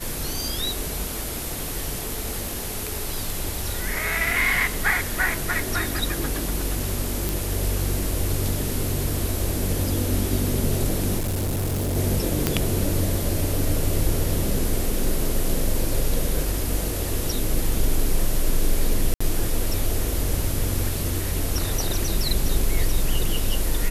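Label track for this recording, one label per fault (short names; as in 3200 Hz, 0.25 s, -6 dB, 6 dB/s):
7.290000	7.290000	pop
11.180000	11.970000	clipped -21.5 dBFS
12.470000	12.470000	pop -4 dBFS
19.140000	19.200000	gap 65 ms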